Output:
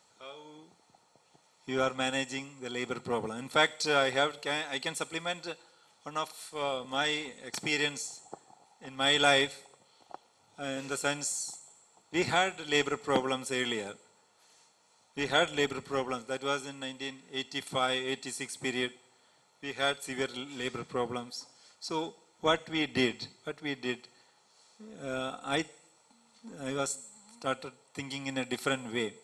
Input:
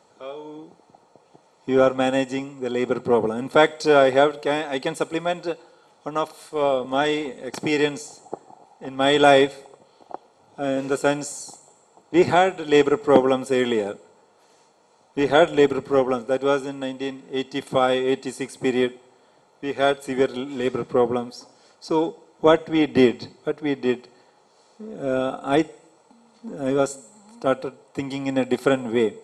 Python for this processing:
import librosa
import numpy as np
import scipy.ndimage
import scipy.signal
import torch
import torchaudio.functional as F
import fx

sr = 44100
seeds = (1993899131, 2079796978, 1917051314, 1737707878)

y = fx.tone_stack(x, sr, knobs='5-5-5')
y = F.gain(torch.from_numpy(y), 6.0).numpy()